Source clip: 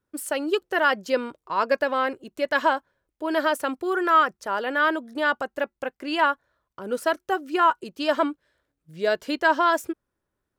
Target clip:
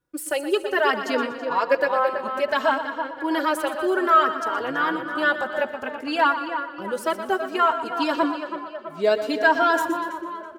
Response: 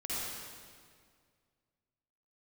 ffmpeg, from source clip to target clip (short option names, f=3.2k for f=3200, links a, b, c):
-filter_complex "[0:a]asplit=2[a][b];[b]aecho=0:1:121|242|363|484:0.282|0.121|0.0521|0.0224[c];[a][c]amix=inputs=2:normalize=0,asplit=3[d][e][f];[d]afade=t=out:st=4.47:d=0.02[g];[e]tremolo=f=130:d=0.621,afade=t=in:st=4.47:d=0.02,afade=t=out:st=5.04:d=0.02[h];[f]afade=t=in:st=5.04:d=0.02[i];[g][h][i]amix=inputs=3:normalize=0,asplit=2[j][k];[k]adelay=328,lowpass=f=2.6k:p=1,volume=-8.5dB,asplit=2[l][m];[m]adelay=328,lowpass=f=2.6k:p=1,volume=0.54,asplit=2[n][o];[o]adelay=328,lowpass=f=2.6k:p=1,volume=0.54,asplit=2[p][q];[q]adelay=328,lowpass=f=2.6k:p=1,volume=0.54,asplit=2[r][s];[s]adelay=328,lowpass=f=2.6k:p=1,volume=0.54,asplit=2[t][u];[u]adelay=328,lowpass=f=2.6k:p=1,volume=0.54[v];[j][l][n][p][r][t][v]amix=inputs=7:normalize=0,asplit=2[w][x];[1:a]atrim=start_sample=2205[y];[x][y]afir=irnorm=-1:irlink=0,volume=-25.5dB[z];[w][z]amix=inputs=2:normalize=0,asplit=2[aa][ab];[ab]adelay=3.7,afreqshift=0.61[ac];[aa][ac]amix=inputs=2:normalize=1,volume=3.5dB"